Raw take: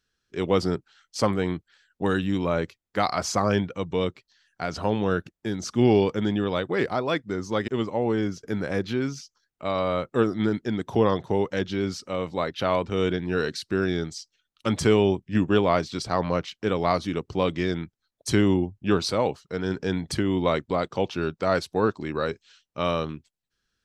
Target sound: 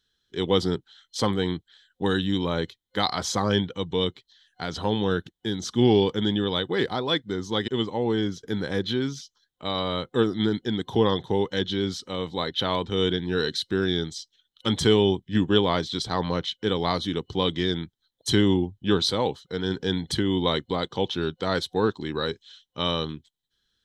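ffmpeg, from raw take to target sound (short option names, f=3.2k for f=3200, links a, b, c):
-af "superequalizer=8b=0.501:10b=0.708:12b=0.631:13b=3.16"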